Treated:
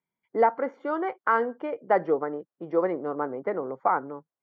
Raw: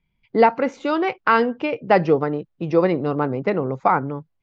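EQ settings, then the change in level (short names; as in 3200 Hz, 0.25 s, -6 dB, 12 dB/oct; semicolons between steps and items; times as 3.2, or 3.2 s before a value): polynomial smoothing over 41 samples; HPF 340 Hz 12 dB/oct; -5.5 dB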